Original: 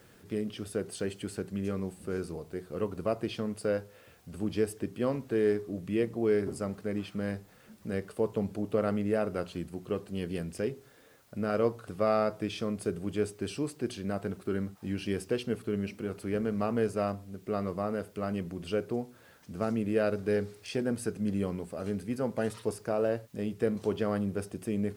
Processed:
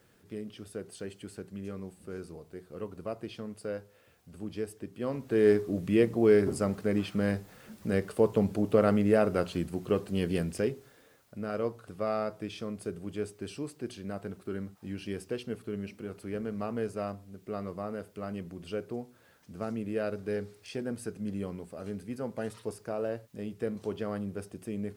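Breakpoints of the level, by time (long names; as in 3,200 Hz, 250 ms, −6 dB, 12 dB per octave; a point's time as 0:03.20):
0:04.92 −6.5 dB
0:05.51 +5 dB
0:10.41 +5 dB
0:11.36 −4.5 dB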